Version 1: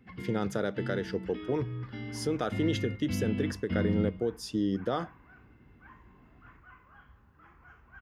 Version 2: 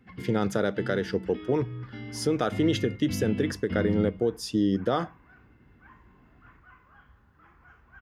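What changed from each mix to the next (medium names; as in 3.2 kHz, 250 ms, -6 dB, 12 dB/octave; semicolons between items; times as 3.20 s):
speech +5.0 dB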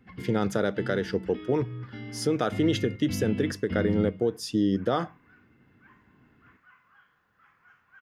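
second sound: add high-pass 1.3 kHz 12 dB/octave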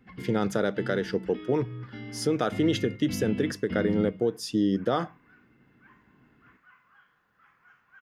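master: add peaking EQ 87 Hz -10 dB 0.35 oct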